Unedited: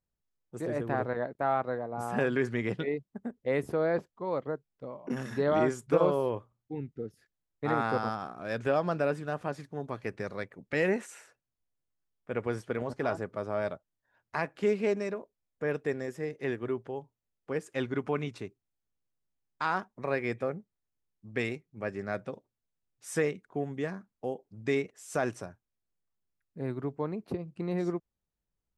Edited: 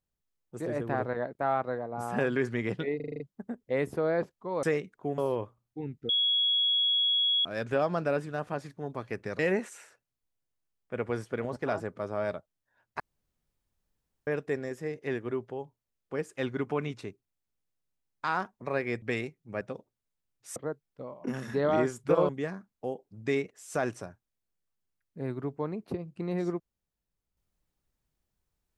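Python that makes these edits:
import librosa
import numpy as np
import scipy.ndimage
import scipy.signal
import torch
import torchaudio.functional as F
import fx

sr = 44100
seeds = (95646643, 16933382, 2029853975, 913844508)

y = fx.edit(x, sr, fx.stutter(start_s=2.96, slice_s=0.04, count=7),
    fx.swap(start_s=4.39, length_s=1.73, other_s=23.14, other_length_s=0.55),
    fx.bleep(start_s=7.03, length_s=1.36, hz=3340.0, db=-23.0),
    fx.cut(start_s=10.33, length_s=0.43),
    fx.room_tone_fill(start_s=14.37, length_s=1.27),
    fx.cut(start_s=20.39, length_s=0.91),
    fx.cut(start_s=21.89, length_s=0.3), tone=tone)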